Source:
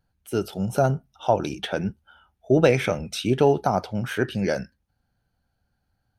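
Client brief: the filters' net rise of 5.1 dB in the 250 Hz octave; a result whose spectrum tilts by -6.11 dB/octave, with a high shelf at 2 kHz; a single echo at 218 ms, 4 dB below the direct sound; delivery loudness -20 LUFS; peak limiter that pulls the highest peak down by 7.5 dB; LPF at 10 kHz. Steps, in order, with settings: low-pass 10 kHz; peaking EQ 250 Hz +7 dB; treble shelf 2 kHz -5.5 dB; peak limiter -10.5 dBFS; delay 218 ms -4 dB; trim +3.5 dB

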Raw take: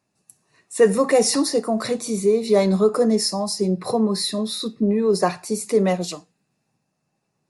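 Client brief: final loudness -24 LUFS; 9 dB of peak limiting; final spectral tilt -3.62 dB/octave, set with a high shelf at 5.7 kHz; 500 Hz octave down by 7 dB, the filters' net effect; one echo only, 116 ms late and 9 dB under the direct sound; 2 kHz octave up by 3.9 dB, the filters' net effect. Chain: peaking EQ 500 Hz -8.5 dB; peaking EQ 2 kHz +4 dB; treble shelf 5.7 kHz +7.5 dB; peak limiter -13.5 dBFS; delay 116 ms -9 dB; trim -1 dB

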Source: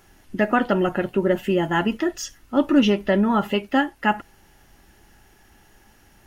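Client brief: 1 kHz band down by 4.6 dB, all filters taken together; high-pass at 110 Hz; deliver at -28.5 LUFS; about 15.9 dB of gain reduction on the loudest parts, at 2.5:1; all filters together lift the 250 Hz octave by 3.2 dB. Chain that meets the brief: high-pass 110 Hz; peaking EQ 250 Hz +4.5 dB; peaking EQ 1 kHz -6.5 dB; compression 2.5:1, threshold -34 dBFS; trim +4.5 dB

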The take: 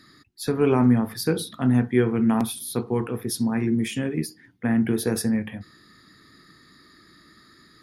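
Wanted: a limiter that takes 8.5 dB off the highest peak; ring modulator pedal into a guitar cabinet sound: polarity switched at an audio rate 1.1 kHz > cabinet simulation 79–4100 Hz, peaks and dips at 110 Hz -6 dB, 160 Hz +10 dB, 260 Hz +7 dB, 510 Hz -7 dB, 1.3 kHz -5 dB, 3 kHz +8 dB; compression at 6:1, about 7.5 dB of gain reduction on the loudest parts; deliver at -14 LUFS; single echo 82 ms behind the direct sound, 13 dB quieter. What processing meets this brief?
compression 6:1, threshold -22 dBFS; peak limiter -22 dBFS; delay 82 ms -13 dB; polarity switched at an audio rate 1.1 kHz; cabinet simulation 79–4100 Hz, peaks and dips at 110 Hz -6 dB, 160 Hz +10 dB, 260 Hz +7 dB, 510 Hz -7 dB, 1.3 kHz -5 dB, 3 kHz +8 dB; trim +16.5 dB

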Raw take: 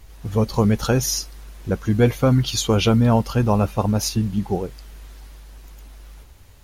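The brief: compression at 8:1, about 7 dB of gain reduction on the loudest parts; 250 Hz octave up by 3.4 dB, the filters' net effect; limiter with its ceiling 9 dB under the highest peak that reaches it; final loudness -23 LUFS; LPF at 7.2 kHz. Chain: low-pass 7.2 kHz; peaking EQ 250 Hz +4 dB; compression 8:1, threshold -17 dBFS; trim +3 dB; peak limiter -13 dBFS

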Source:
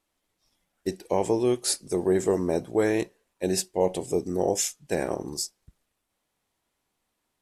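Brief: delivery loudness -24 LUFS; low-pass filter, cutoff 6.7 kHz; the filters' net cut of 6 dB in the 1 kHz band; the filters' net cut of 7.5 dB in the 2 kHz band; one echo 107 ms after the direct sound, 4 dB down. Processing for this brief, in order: low-pass 6.7 kHz; peaking EQ 1 kHz -7.5 dB; peaking EQ 2 kHz -7 dB; delay 107 ms -4 dB; trim +3 dB

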